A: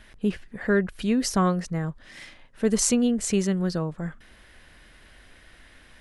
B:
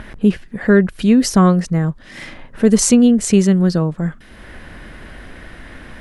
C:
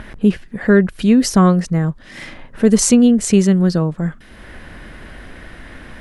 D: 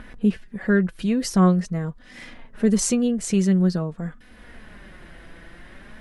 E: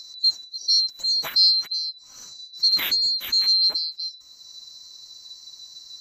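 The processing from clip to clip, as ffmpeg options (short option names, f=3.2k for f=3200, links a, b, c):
-filter_complex "[0:a]equalizer=f=200:t=o:w=2:g=5,acrossover=split=2100[a][b];[a]acompressor=mode=upward:threshold=-32dB:ratio=2.5[c];[c][b]amix=inputs=2:normalize=0,apsyclip=8.5dB,volume=-1.5dB"
-af anull
-af "flanger=delay=4:depth=2:regen=45:speed=0.47:shape=sinusoidal,volume=-4dB"
-af "afftfilt=real='real(if(lt(b,736),b+184*(1-2*mod(floor(b/184),2)),b),0)':imag='imag(if(lt(b,736),b+184*(1-2*mod(floor(b/184),2)),b),0)':win_size=2048:overlap=0.75,volume=-1.5dB"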